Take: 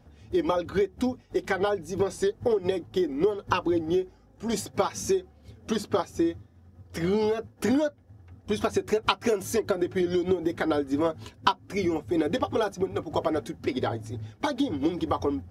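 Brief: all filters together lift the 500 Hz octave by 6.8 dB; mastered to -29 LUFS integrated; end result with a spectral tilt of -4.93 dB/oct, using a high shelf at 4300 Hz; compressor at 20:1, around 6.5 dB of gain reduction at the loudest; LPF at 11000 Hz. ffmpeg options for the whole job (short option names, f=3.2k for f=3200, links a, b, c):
-af "lowpass=11k,equalizer=f=500:t=o:g=9,highshelf=f=4.3k:g=5.5,acompressor=threshold=-18dB:ratio=20,volume=-3.5dB"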